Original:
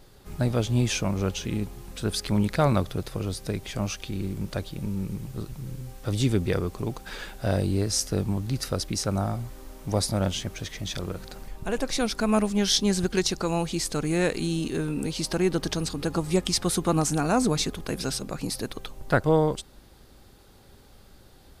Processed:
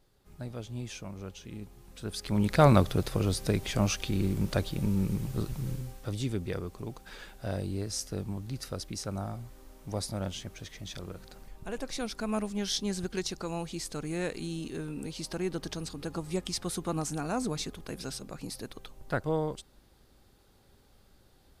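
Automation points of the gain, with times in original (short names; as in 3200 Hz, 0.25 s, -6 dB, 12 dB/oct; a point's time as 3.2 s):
1.39 s -15 dB
2.15 s -9 dB
2.64 s +2 dB
5.71 s +2 dB
6.2 s -9 dB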